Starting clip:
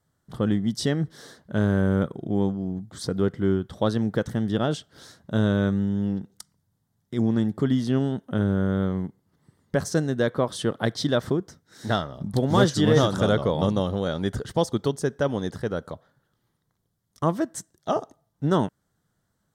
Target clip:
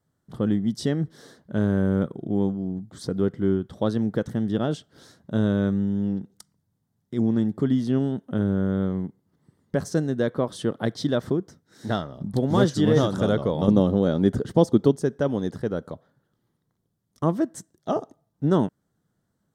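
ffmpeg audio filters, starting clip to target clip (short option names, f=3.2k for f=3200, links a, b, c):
-af "asetnsamples=n=441:p=0,asendcmd='13.68 equalizer g 14;14.92 equalizer g 8',equalizer=f=260:t=o:w=2.6:g=6,volume=-5dB"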